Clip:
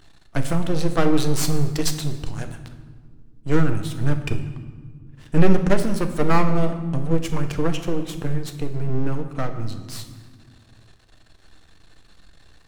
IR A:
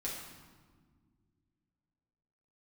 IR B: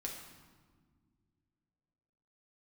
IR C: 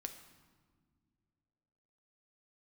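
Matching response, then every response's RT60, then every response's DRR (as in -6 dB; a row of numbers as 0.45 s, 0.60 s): C; 1.7 s, no single decay rate, no single decay rate; -5.0 dB, -1.0 dB, 6.0 dB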